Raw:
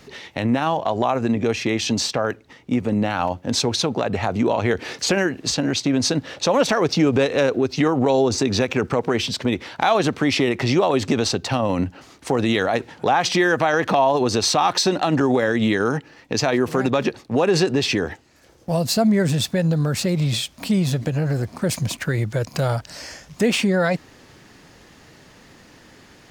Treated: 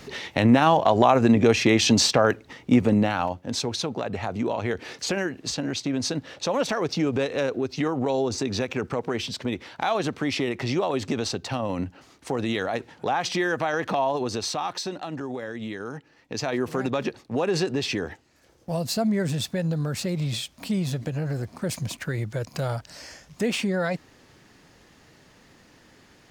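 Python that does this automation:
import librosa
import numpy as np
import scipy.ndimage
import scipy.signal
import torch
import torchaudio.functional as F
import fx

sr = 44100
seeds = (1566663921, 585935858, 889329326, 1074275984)

y = fx.gain(x, sr, db=fx.line((2.81, 3.0), (3.44, -7.0), (14.09, -7.0), (15.15, -14.5), (15.85, -14.5), (16.6, -6.5)))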